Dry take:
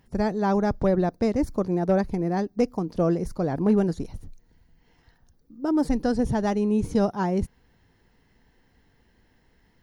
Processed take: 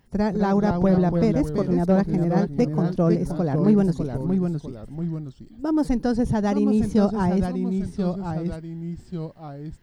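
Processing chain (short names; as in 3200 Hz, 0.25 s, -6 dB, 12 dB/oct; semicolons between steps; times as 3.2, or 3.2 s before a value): echoes that change speed 0.184 s, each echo -2 st, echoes 2, each echo -6 dB; dynamic EQ 160 Hz, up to +5 dB, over -36 dBFS, Q 1.4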